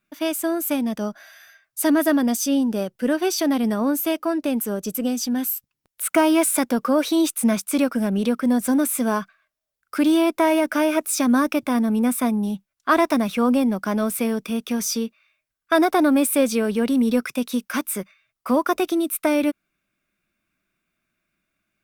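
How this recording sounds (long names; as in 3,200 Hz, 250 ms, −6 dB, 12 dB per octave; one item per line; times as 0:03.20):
background noise floor −83 dBFS
spectral slope −4.0 dB per octave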